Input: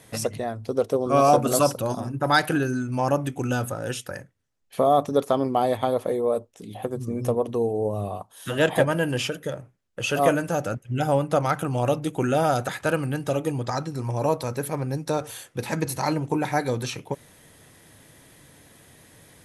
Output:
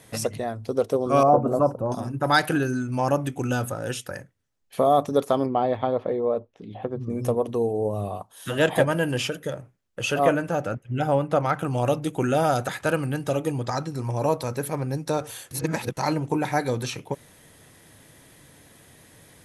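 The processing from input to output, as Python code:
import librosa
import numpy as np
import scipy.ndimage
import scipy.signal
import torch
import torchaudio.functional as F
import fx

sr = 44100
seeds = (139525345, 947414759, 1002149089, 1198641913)

y = fx.curve_eq(x, sr, hz=(960.0, 3200.0, 5600.0), db=(0, -29, -26), at=(1.23, 1.92))
y = fx.air_absorb(y, sr, metres=270.0, at=(5.46, 7.1))
y = fx.bass_treble(y, sr, bass_db=-1, treble_db=-9, at=(10.14, 11.63))
y = fx.edit(y, sr, fx.reverse_span(start_s=15.51, length_s=0.46), tone=tone)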